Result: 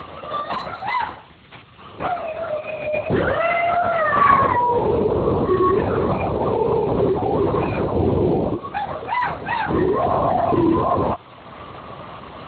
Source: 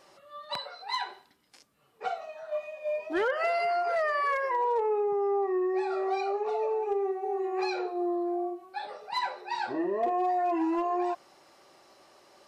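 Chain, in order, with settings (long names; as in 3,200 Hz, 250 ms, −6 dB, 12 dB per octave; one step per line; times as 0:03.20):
in parallel at −2 dB: upward compression, threshold −30 dBFS
on the sum: brickwall limiter −21.5 dBFS, peak gain reduction 5.5 dB
0:02.44–0:02.95: downward compressor 10 to 1, threshold −30 dBFS, peak gain reduction 6.5 dB
background noise blue −44 dBFS
hollow resonant body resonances 260/1,100 Hz, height 11 dB, ringing for 45 ms
linear-prediction vocoder at 8 kHz whisper
level +7.5 dB
Speex 17 kbit/s 16,000 Hz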